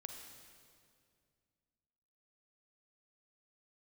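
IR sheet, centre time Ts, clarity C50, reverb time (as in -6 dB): 55 ms, 4.0 dB, 2.2 s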